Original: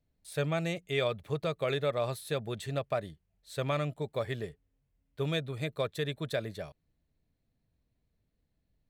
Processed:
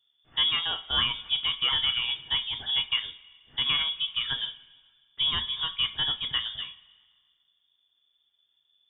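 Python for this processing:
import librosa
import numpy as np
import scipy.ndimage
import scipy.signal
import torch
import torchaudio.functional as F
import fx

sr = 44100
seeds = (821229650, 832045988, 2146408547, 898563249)

y = fx.freq_invert(x, sr, carrier_hz=3500)
y = fx.rev_double_slope(y, sr, seeds[0], early_s=0.25, late_s=1.7, knee_db=-20, drr_db=5.0)
y = y * 10.0 ** (3.0 / 20.0)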